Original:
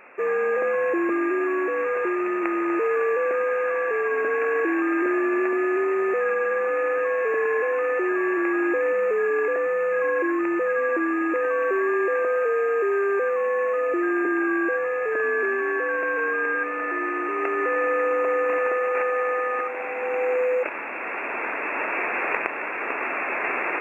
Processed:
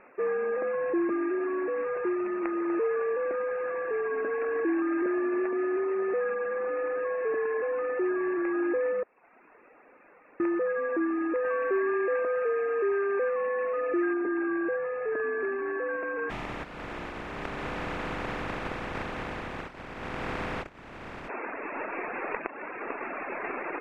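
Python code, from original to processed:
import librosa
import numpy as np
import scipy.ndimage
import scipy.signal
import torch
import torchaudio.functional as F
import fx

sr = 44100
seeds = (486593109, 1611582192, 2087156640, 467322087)

y = fx.high_shelf(x, sr, hz=2200.0, db=9.5, at=(11.45, 14.14))
y = fx.spec_flatten(y, sr, power=0.13, at=(16.29, 21.28), fade=0.02)
y = fx.edit(y, sr, fx.room_tone_fill(start_s=9.03, length_s=1.37), tone=tone)
y = fx.dereverb_blind(y, sr, rt60_s=0.81)
y = scipy.signal.sosfilt(scipy.signal.butter(2, 1900.0, 'lowpass', fs=sr, output='sos'), y)
y = fx.low_shelf(y, sr, hz=320.0, db=9.5)
y = F.gain(torch.from_numpy(y), -6.0).numpy()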